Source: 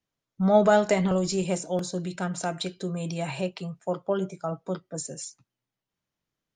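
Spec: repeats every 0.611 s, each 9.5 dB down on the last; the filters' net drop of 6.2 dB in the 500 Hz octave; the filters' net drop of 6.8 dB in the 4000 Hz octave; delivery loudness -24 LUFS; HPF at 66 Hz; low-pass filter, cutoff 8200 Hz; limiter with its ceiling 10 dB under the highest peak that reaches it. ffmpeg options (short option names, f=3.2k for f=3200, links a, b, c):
-af "highpass=66,lowpass=8.2k,equalizer=f=500:t=o:g=-8.5,equalizer=f=4k:t=o:g=-8.5,alimiter=limit=-23dB:level=0:latency=1,aecho=1:1:611|1222|1833|2444:0.335|0.111|0.0365|0.012,volume=9.5dB"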